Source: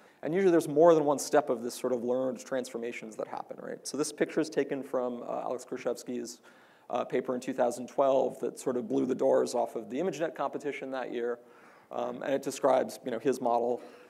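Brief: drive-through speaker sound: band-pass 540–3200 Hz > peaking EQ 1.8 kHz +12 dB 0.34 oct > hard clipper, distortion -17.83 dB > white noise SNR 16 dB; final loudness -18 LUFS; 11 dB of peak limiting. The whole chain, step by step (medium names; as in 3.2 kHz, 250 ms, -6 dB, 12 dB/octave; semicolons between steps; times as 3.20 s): peak limiter -20 dBFS; band-pass 540–3200 Hz; peaking EQ 1.8 kHz +12 dB 0.34 oct; hard clipper -26.5 dBFS; white noise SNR 16 dB; trim +19 dB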